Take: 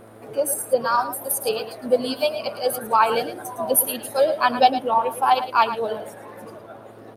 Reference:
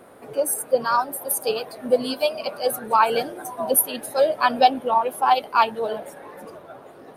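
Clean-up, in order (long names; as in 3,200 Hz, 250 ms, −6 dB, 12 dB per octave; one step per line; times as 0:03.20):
click removal
hum removal 110.4 Hz, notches 6
echo removal 110 ms −12 dB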